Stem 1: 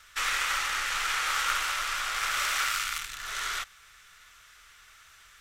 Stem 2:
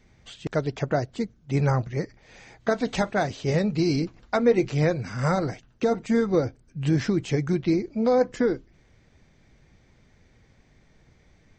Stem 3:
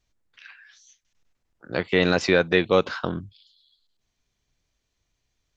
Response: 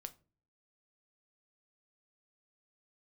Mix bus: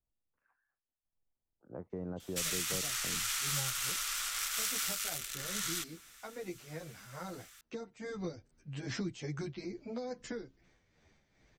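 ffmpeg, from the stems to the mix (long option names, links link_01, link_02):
-filter_complex "[0:a]crystalizer=i=3:c=0,alimiter=limit=-12dB:level=0:latency=1:release=164,adelay=2200,volume=-9dB[link_01];[1:a]lowshelf=frequency=300:gain=-8,tremolo=f=2.4:d=0.57,asplit=2[link_02][link_03];[link_03]adelay=10.4,afreqshift=-1.2[link_04];[link_02][link_04]amix=inputs=2:normalize=1,adelay=1900,volume=-1dB,afade=type=in:start_time=7.93:duration=0.31:silence=0.354813[link_05];[2:a]lowpass=frequency=1000:width=0.5412,lowpass=frequency=1000:width=1.3066,volume=-14.5dB[link_06];[link_01][link_05][link_06]amix=inputs=3:normalize=0,acrossover=split=220|3000[link_07][link_08][link_09];[link_08]acompressor=threshold=-41dB:ratio=6[link_10];[link_07][link_10][link_09]amix=inputs=3:normalize=0"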